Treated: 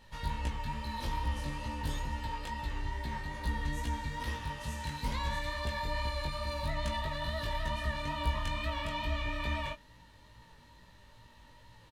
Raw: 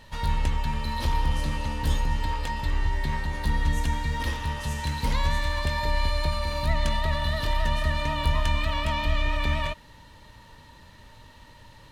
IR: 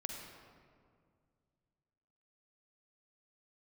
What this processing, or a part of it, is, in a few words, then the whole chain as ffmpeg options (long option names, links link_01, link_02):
double-tracked vocal: -filter_complex "[0:a]asplit=2[link_01][link_02];[link_02]adelay=17,volume=-13dB[link_03];[link_01][link_03]amix=inputs=2:normalize=0,flanger=delay=17:depth=3.9:speed=2.3,volume=-5dB"